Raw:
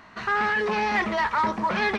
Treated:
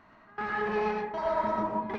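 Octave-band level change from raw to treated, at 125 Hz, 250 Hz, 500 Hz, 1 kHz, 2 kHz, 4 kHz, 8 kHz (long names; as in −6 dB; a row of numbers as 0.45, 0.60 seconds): −6.0 dB, −5.5 dB, −2.0 dB, −6.5 dB, −12.5 dB, −15.5 dB, can't be measured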